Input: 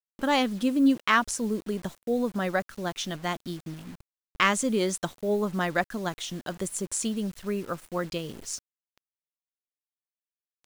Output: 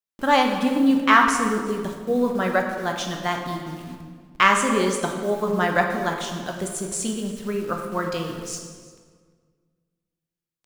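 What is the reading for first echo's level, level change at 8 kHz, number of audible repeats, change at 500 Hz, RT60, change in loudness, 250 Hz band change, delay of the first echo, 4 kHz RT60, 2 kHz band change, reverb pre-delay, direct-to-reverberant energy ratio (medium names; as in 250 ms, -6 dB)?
-20.5 dB, +2.5 dB, 1, +5.5 dB, 1.7 s, +5.5 dB, +4.0 dB, 347 ms, 1.2 s, +6.5 dB, 9 ms, 2.0 dB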